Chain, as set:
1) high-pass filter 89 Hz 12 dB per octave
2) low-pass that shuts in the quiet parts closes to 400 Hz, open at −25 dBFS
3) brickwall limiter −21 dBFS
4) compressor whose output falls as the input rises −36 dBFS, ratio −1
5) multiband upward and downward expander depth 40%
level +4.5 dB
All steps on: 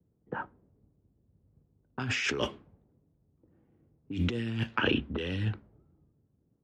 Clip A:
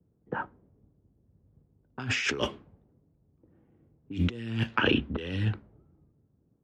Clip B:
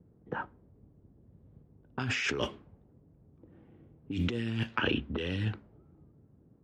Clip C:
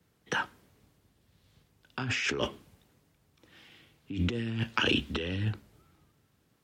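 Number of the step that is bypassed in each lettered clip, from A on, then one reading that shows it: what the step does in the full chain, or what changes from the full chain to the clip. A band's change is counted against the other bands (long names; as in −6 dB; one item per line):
3, average gain reduction 1.5 dB
5, change in momentary loudness spread −2 LU
2, 4 kHz band +2.5 dB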